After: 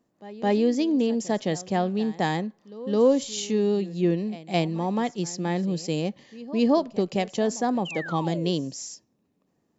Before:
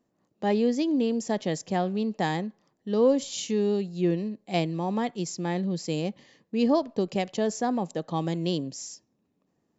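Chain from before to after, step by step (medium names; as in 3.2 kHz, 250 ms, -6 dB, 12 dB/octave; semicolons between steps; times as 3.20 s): pre-echo 214 ms -18.5 dB; painted sound fall, 7.85–8.51 s, 370–3200 Hz -38 dBFS; trim +2 dB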